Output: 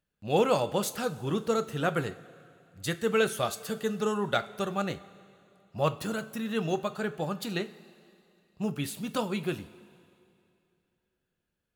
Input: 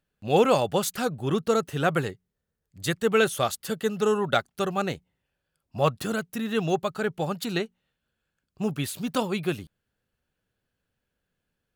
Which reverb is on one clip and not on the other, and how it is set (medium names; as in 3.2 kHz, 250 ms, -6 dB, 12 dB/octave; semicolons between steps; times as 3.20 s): two-slope reverb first 0.28 s, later 2.6 s, from -16 dB, DRR 9.5 dB; trim -4.5 dB